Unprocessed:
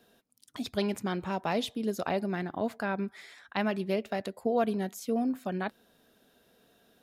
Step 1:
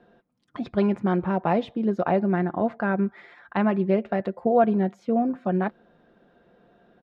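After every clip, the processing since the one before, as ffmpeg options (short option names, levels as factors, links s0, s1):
-af "lowpass=1500,aecho=1:1:5.7:0.39,volume=2.37"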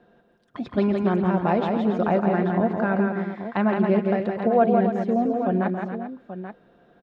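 -af "aecho=1:1:134|167|278|397|833:0.15|0.596|0.316|0.211|0.282"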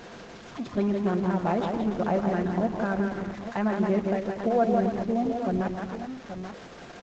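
-af "aeval=exprs='val(0)+0.5*0.0237*sgn(val(0))':c=same,aresample=16000,aresample=44100,volume=0.596" -ar 48000 -c:a libopus -b:a 12k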